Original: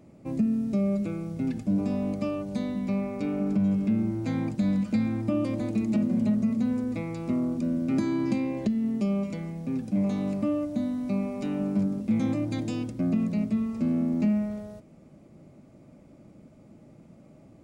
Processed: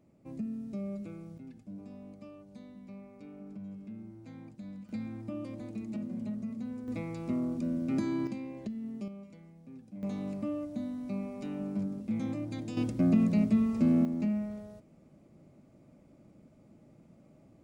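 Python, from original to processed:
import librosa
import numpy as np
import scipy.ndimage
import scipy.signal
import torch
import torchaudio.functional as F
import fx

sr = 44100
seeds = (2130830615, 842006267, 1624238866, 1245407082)

y = fx.gain(x, sr, db=fx.steps((0.0, -12.0), (1.38, -19.5), (4.89, -12.5), (6.88, -5.0), (8.27, -12.0), (9.08, -19.0), (10.03, -8.0), (12.77, 1.0), (14.05, -6.5)))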